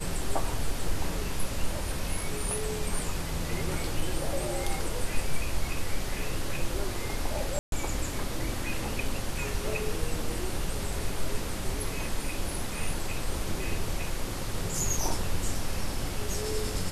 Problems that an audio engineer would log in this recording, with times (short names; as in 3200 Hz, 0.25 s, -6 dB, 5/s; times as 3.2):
7.59–7.72 gap 0.132 s